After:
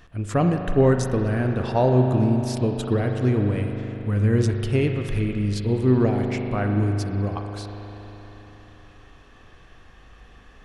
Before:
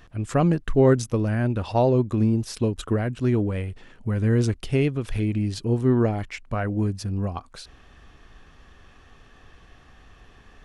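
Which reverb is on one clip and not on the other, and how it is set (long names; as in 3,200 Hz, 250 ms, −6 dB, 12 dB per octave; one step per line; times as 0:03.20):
spring reverb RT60 3.9 s, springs 39 ms, chirp 25 ms, DRR 3.5 dB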